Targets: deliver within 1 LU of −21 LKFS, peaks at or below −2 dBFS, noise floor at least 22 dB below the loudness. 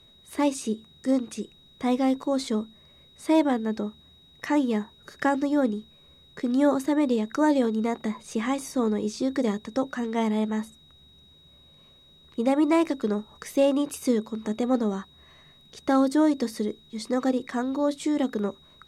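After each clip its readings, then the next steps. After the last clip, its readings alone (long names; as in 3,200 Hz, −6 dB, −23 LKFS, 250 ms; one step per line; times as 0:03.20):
interfering tone 3,800 Hz; level of the tone −54 dBFS; integrated loudness −26.0 LKFS; sample peak −11.5 dBFS; target loudness −21.0 LKFS
→ notch filter 3,800 Hz, Q 30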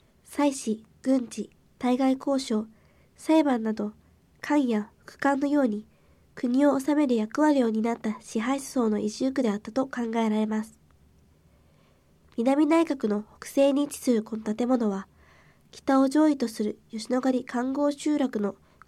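interfering tone none found; integrated loudness −26.0 LKFS; sample peak −11.5 dBFS; target loudness −21.0 LKFS
→ level +5 dB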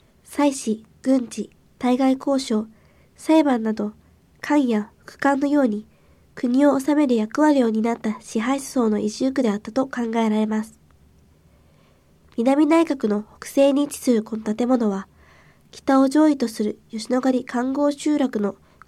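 integrated loudness −21.0 LKFS; sample peak −6.5 dBFS; background noise floor −56 dBFS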